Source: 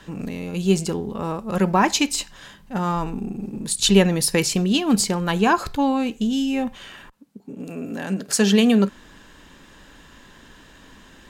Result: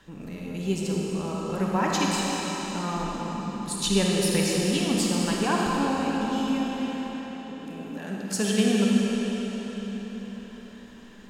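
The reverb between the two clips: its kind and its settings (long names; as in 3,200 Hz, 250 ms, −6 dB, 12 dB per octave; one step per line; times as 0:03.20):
comb and all-pass reverb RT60 5 s, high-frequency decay 0.9×, pre-delay 10 ms, DRR −3.5 dB
level −9.5 dB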